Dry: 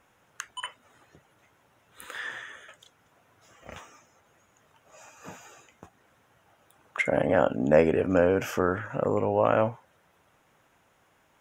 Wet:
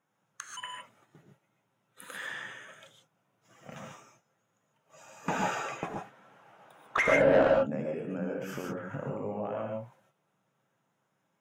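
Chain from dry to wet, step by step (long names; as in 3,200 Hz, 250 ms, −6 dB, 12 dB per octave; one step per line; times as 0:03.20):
spectral magnitudes quantised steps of 15 dB
noise gate −58 dBFS, range −12 dB
low shelf with overshoot 100 Hz −13.5 dB, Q 3
downward compressor 6 to 1, threshold −32 dBFS, peak gain reduction 17.5 dB
0:05.28–0:07.51: mid-hump overdrive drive 29 dB, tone 1,500 Hz, clips at −9 dBFS
reverb whose tail is shaped and stops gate 170 ms rising, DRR 0 dB
level −3.5 dB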